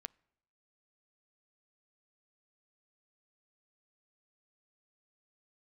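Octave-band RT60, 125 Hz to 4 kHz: 0.80, 0.80, 0.80, 0.75, 0.70, 0.70 seconds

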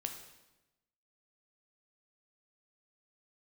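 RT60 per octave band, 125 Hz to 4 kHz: 1.2, 1.2, 1.0, 1.0, 0.95, 0.90 seconds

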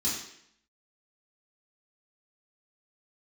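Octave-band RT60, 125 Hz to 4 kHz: 0.70, 0.75, 0.70, 0.70, 0.75, 0.70 seconds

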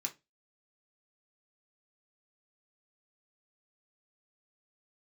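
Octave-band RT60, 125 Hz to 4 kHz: 0.30, 0.30, 0.25, 0.20, 0.20, 0.20 seconds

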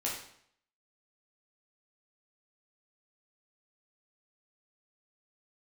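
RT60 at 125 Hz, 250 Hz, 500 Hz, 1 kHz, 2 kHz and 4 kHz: 0.70, 0.65, 0.65, 0.65, 0.65, 0.60 seconds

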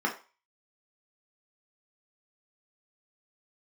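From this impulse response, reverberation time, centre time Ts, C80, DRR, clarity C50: 0.35 s, 16 ms, 16.5 dB, −1.0 dB, 11.0 dB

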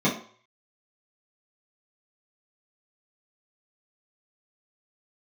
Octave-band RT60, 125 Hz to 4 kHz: 0.40, 0.40, 0.45, 0.50, 0.45, 0.45 seconds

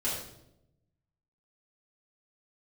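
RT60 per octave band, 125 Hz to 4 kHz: 1.4, 1.1, 0.95, 0.70, 0.60, 0.60 seconds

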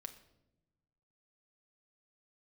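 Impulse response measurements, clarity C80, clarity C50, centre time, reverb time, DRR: 15.0 dB, 12.5 dB, 8 ms, 0.95 s, 6.0 dB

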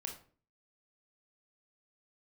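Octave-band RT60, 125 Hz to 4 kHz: 0.60, 0.55, 0.45, 0.40, 0.35, 0.30 seconds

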